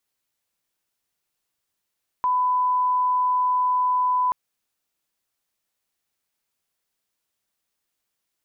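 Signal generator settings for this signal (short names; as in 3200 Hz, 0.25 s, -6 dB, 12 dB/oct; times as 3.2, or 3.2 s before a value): line-up tone -18 dBFS 2.08 s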